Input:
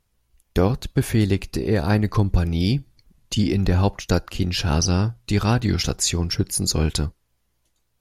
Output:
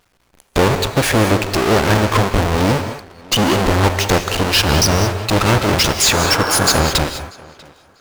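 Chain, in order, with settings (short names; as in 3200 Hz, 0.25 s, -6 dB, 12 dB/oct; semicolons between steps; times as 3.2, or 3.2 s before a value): half-waves squared off; overdrive pedal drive 21 dB, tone 5400 Hz, clips at -4 dBFS; painted sound noise, 6.11–6.82, 260–1700 Hz -21 dBFS; on a send: tape echo 0.641 s, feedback 27%, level -22 dB, low-pass 3900 Hz; on the sum: non-linear reverb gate 0.23 s rising, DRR 8 dB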